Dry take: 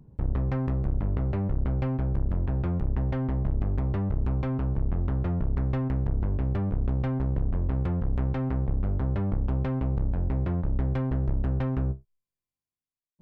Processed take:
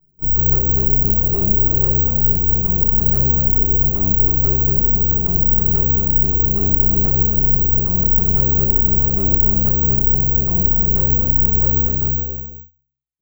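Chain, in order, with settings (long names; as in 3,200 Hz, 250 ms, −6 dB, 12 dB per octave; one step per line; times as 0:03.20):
high-shelf EQ 2,000 Hz −9.5 dB
brickwall limiter −20.5 dBFS, peak gain reduction 4.5 dB
parametric band 430 Hz +3.5 dB 0.73 octaves
rectangular room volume 170 cubic metres, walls furnished, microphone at 3.8 metres
noise gate −19 dBFS, range −16 dB
bouncing-ball delay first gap 240 ms, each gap 0.7×, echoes 5
low-pass that shuts in the quiet parts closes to 1,600 Hz, open at −8.5 dBFS
bad sample-rate conversion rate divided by 2×, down none, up zero stuff
level −6 dB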